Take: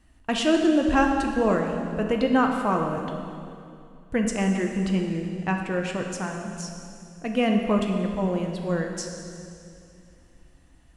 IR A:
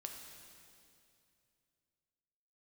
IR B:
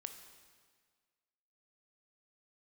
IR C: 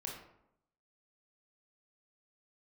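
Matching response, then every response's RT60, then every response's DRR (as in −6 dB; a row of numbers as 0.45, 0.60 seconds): A; 2.6, 1.7, 0.80 seconds; 2.5, 6.5, −1.5 decibels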